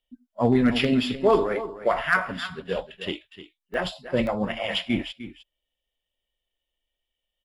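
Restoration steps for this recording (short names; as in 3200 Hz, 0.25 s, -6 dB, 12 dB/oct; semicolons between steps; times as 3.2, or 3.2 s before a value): clip repair -10 dBFS; interpolate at 3.74/4.27, 1 ms; inverse comb 0.304 s -13.5 dB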